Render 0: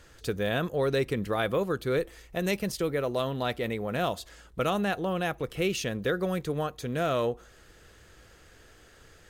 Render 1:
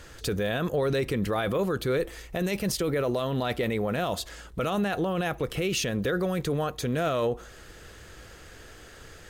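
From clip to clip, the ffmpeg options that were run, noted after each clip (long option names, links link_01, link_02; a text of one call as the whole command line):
ffmpeg -i in.wav -af "alimiter=level_in=2.5dB:limit=-24dB:level=0:latency=1:release=17,volume=-2.5dB,volume=7.5dB" out.wav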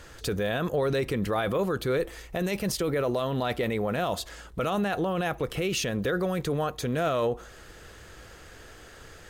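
ffmpeg -i in.wav -af "equalizer=frequency=900:width_type=o:width=1.5:gain=2.5,volume=-1dB" out.wav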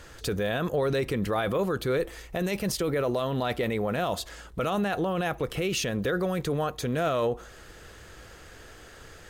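ffmpeg -i in.wav -af anull out.wav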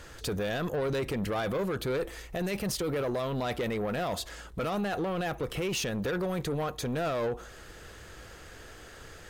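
ffmpeg -i in.wav -af "asoftclip=type=tanh:threshold=-26dB" out.wav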